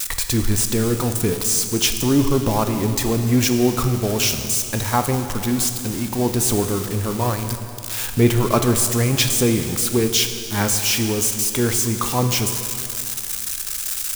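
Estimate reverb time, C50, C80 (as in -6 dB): 2.8 s, 7.5 dB, 8.5 dB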